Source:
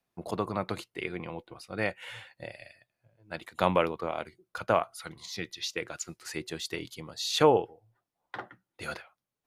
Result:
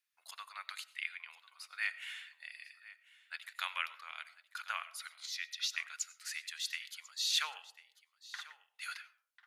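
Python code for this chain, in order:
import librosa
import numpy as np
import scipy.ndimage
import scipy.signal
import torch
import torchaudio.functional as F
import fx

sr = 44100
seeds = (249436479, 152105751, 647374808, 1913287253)

y = scipy.signal.sosfilt(scipy.signal.cheby2(4, 80, 260.0, 'highpass', fs=sr, output='sos'), x)
y = y + 10.0 ** (-18.5 / 20.0) * np.pad(y, (int(1044 * sr / 1000.0), 0))[:len(y)]
y = fx.rev_freeverb(y, sr, rt60_s=0.73, hf_ratio=0.25, predelay_ms=55, drr_db=17.0)
y = F.gain(torch.from_numpy(y), -1.0).numpy()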